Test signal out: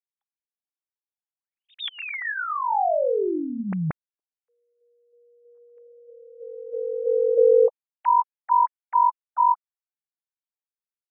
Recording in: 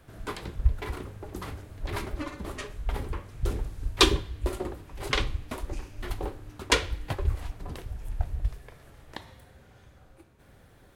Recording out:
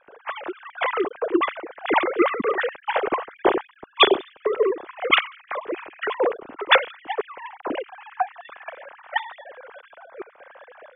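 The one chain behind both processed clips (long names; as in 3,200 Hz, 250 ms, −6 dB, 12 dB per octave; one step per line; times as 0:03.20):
three sine waves on the formant tracks
automatic gain control gain up to 13 dB
low-pass that shuts in the quiet parts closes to 2,300 Hz, open at −10 dBFS
level −1 dB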